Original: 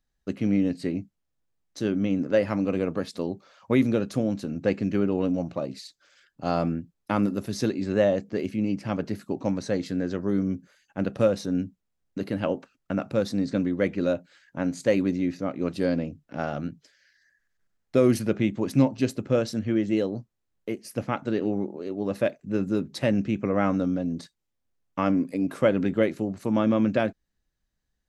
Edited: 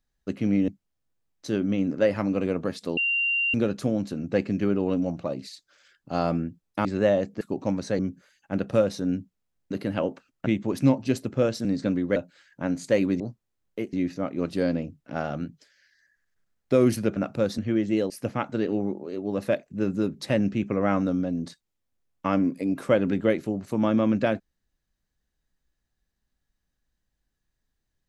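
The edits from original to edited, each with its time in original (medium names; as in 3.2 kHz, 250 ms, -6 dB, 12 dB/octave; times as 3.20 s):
0.68–1.00 s: delete
3.29–3.86 s: bleep 2.77 kHz -21.5 dBFS
7.17–7.80 s: delete
8.36–9.20 s: delete
9.78–10.45 s: delete
12.92–13.34 s: swap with 18.39–19.58 s
13.85–14.12 s: delete
20.10–20.83 s: move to 15.16 s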